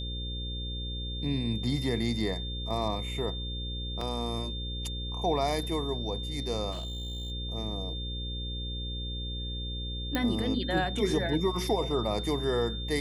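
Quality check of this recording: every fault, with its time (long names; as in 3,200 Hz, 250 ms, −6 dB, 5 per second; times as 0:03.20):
mains buzz 60 Hz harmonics 9 −36 dBFS
whistle 3,600 Hz −38 dBFS
0:04.01: drop-out 3.5 ms
0:06.71–0:07.32: clipping −32.5 dBFS
0:10.15: click −14 dBFS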